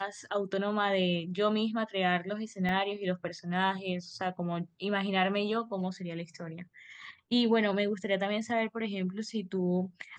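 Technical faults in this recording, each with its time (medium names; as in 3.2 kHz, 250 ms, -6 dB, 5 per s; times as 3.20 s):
2.69 s: dropout 2.2 ms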